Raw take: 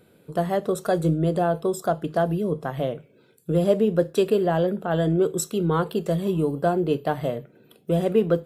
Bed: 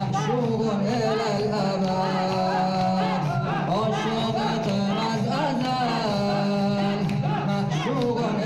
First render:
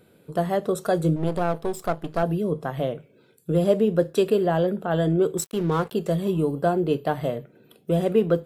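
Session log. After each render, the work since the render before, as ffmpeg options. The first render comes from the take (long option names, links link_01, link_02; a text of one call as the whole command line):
ffmpeg -i in.wav -filter_complex "[0:a]asettb=1/sr,asplit=3[link_01][link_02][link_03];[link_01]atrim=end=1.164[link_04];[link_02]atrim=start=1.16:end=2.23,asetpts=PTS-STARTPTS,afade=type=in:duration=0.004:curve=qsin,afade=type=out:start_time=1.066:duration=0.004:curve=qsin,aeval=exprs='if(lt(val(0),0),0.251*val(0),val(0))':channel_layout=same[link_05];[link_03]atrim=start=2.226[link_06];[link_04][link_05]acrossfade=duration=0.004:curve1=hsin:curve2=qsin[link_07];[link_07][link_06]acrossfade=duration=0.004:curve1=qsin:curve2=hsin,asettb=1/sr,asplit=3[link_08][link_09][link_10];[link_08]atrim=end=5.374[link_11];[link_09]atrim=start=5.37:end=5.92,asetpts=PTS-STARTPTS,afade=type=in:duration=0.004:curve=qsin,afade=type=out:start_time=0.546:duration=0.004:curve=qsin,aeval=exprs='sgn(val(0))*max(abs(val(0))-0.0119,0)':channel_layout=same[link_12];[link_10]atrim=start=5.916[link_13];[link_11][link_12]acrossfade=duration=0.004:curve1=hsin:curve2=qsin[link_14];[link_14][link_13]acrossfade=duration=0.004:curve1=qsin:curve2=hsin" out.wav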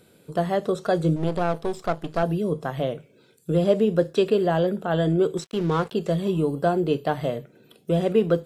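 ffmpeg -i in.wav -filter_complex "[0:a]acrossover=split=4300[link_01][link_02];[link_02]acompressor=threshold=-59dB:ratio=4:attack=1:release=60[link_03];[link_01][link_03]amix=inputs=2:normalize=0,equalizer=frequency=6600:width_type=o:width=1.7:gain=9" out.wav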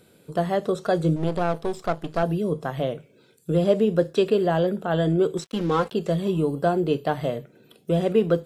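ffmpeg -i in.wav -filter_complex "[0:a]asettb=1/sr,asplit=3[link_01][link_02][link_03];[link_01]atrim=end=5.494[link_04];[link_02]atrim=start=5.49:end=5.89,asetpts=PTS-STARTPTS,afade=type=in:duration=0.004:curve=qsin,afade=type=out:start_time=0.396:duration=0.004:curve=qsin,aecho=1:1:3.8:0.66,atrim=end_sample=17640[link_05];[link_03]atrim=start=5.886[link_06];[link_04][link_05]acrossfade=duration=0.004:curve1=hsin:curve2=qsin[link_07];[link_07][link_06]acrossfade=duration=0.004:curve1=qsin:curve2=hsin" out.wav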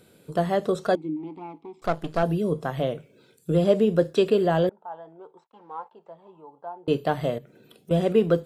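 ffmpeg -i in.wav -filter_complex "[0:a]asettb=1/sr,asplit=3[link_01][link_02][link_03];[link_01]atrim=end=0.954[link_04];[link_02]atrim=start=0.95:end=1.82,asetpts=PTS-STARTPTS,afade=type=in:duration=0.004:curve=qsin,afade=type=out:start_time=0.866:duration=0.004:curve=qsin,asplit=3[link_05][link_06][link_07];[link_05]bandpass=frequency=300:width_type=q:width=8,volume=0dB[link_08];[link_06]bandpass=frequency=870:width_type=q:width=8,volume=-6dB[link_09];[link_07]bandpass=frequency=2240:width_type=q:width=8,volume=-9dB[link_10];[link_08][link_09][link_10]amix=inputs=3:normalize=0[link_11];[link_03]atrim=start=1.816[link_12];[link_04][link_11]acrossfade=duration=0.004:curve1=hsin:curve2=qsin[link_13];[link_13][link_12]acrossfade=duration=0.004:curve1=qsin:curve2=hsin,asettb=1/sr,asplit=3[link_14][link_15][link_16];[link_14]atrim=end=4.694[link_17];[link_15]atrim=start=4.69:end=6.88,asetpts=PTS-STARTPTS,afade=type=in:duration=0.004:curve=qsin,afade=type=out:start_time=2.186:duration=0.004:curve=qsin,bandpass=frequency=890:width_type=q:width=10[link_18];[link_16]atrim=start=6.876[link_19];[link_17][link_18]acrossfade=duration=0.004:curve1=hsin:curve2=qsin[link_20];[link_20][link_19]acrossfade=duration=0.004:curve1=qsin:curve2=hsin,asettb=1/sr,asplit=3[link_21][link_22][link_23];[link_21]atrim=end=7.384[link_24];[link_22]atrim=start=7.38:end=7.91,asetpts=PTS-STARTPTS,afade=type=in:duration=0.004:curve=qsin,afade=type=out:start_time=0.526:duration=0.004:curve=qsin,acompressor=threshold=-44dB:ratio=2.5:attack=3.2:release=140:knee=1:detection=peak[link_25];[link_23]atrim=start=7.906[link_26];[link_24][link_25]acrossfade=duration=0.004:curve1=hsin:curve2=qsin[link_27];[link_27][link_26]acrossfade=duration=0.004:curve1=qsin:curve2=hsin" out.wav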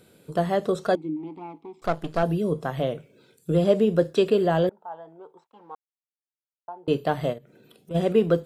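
ffmpeg -i in.wav -filter_complex "[0:a]asplit=3[link_01][link_02][link_03];[link_01]afade=type=out:start_time=7.32:duration=0.02[link_04];[link_02]acompressor=threshold=-51dB:ratio=1.5:attack=3.2:release=140:knee=1:detection=peak,afade=type=in:start_time=7.32:duration=0.02,afade=type=out:start_time=7.94:duration=0.02[link_05];[link_03]afade=type=in:start_time=7.94:duration=0.02[link_06];[link_04][link_05][link_06]amix=inputs=3:normalize=0,asplit=3[link_07][link_08][link_09];[link_07]atrim=end=5.75,asetpts=PTS-STARTPTS,afade=type=out:start_time=5.746:duration=0.004:curve=hsin[link_10];[link_08]atrim=start=5.75:end=6.68,asetpts=PTS-STARTPTS,volume=0[link_11];[link_09]atrim=start=6.68,asetpts=PTS-STARTPTS,afade=type=in:duration=0.004:curve=hsin[link_12];[link_10][link_11][link_12]concat=n=3:v=0:a=1" out.wav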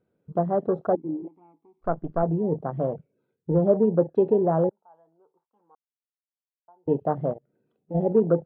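ffmpeg -i in.wav -af "afwtdn=0.0501,lowpass=1300" out.wav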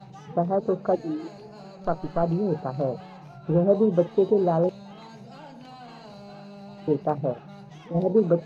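ffmpeg -i in.wav -i bed.wav -filter_complex "[1:a]volume=-20dB[link_01];[0:a][link_01]amix=inputs=2:normalize=0" out.wav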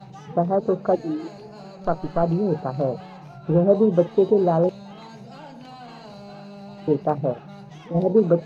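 ffmpeg -i in.wav -af "volume=3dB" out.wav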